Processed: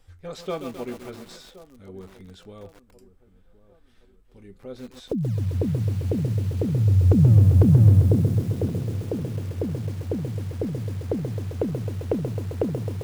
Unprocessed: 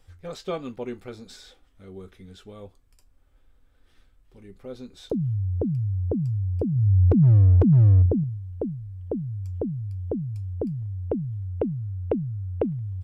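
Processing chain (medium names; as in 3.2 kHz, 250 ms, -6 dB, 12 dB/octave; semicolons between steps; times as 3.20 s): on a send: feedback echo behind a low-pass 1072 ms, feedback 42%, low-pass 1.1 kHz, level -16.5 dB; on the sum: bit-crushed delay 132 ms, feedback 80%, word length 7-bit, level -8 dB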